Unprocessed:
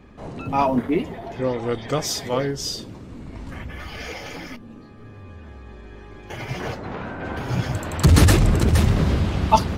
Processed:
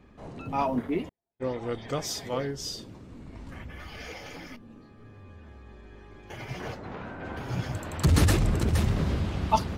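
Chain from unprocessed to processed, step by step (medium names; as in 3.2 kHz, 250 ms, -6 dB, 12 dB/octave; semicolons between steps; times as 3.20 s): 1.09–1.61 s: gate -26 dBFS, range -50 dB; trim -7.5 dB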